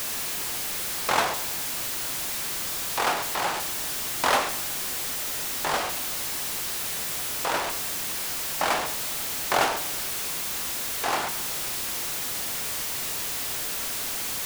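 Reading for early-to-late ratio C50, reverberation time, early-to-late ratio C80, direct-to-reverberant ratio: 12.5 dB, 1.0 s, 15.0 dB, 10.0 dB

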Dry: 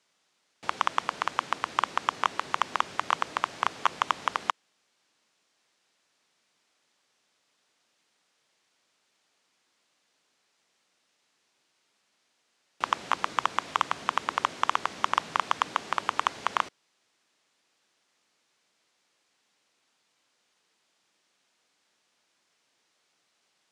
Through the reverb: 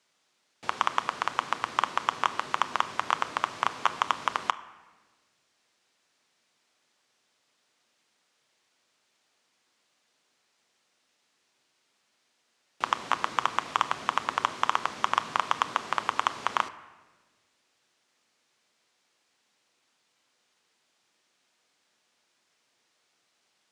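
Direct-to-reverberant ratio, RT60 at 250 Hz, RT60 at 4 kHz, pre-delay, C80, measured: 11.5 dB, 1.7 s, 0.90 s, 8 ms, 16.5 dB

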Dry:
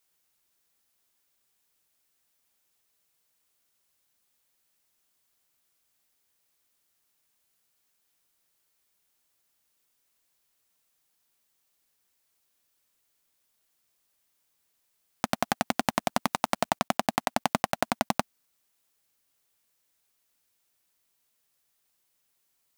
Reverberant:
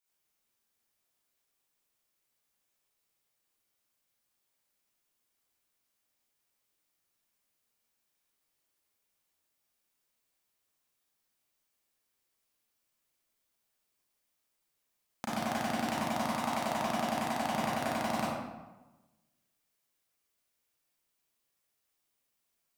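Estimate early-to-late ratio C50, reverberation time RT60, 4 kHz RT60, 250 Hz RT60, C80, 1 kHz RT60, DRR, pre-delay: -3.0 dB, 1.2 s, 0.70 s, 1.2 s, 0.5 dB, 1.1 s, -9.0 dB, 31 ms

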